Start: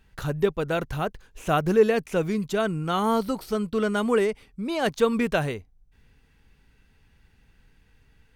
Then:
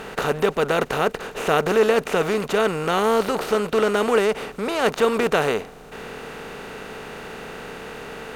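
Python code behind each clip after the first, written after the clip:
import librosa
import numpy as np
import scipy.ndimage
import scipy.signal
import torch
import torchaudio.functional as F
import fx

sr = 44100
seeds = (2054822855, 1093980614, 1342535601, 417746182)

y = fx.bin_compress(x, sr, power=0.4)
y = fx.low_shelf(y, sr, hz=210.0, db=-10.0)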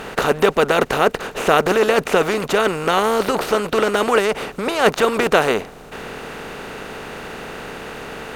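y = fx.hpss(x, sr, part='percussive', gain_db=7)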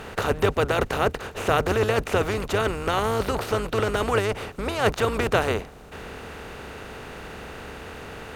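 y = fx.octave_divider(x, sr, octaves=2, level_db=1.0)
y = y * librosa.db_to_amplitude(-7.0)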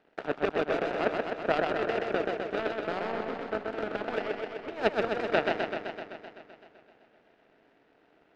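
y = fx.cabinet(x, sr, low_hz=190.0, low_slope=24, high_hz=2700.0, hz=(300.0, 660.0, 1100.0), db=(8, 8, -9))
y = fx.power_curve(y, sr, exponent=2.0)
y = fx.echo_warbled(y, sr, ms=128, feedback_pct=71, rate_hz=2.8, cents=79, wet_db=-3.5)
y = y * librosa.db_to_amplitude(-2.5)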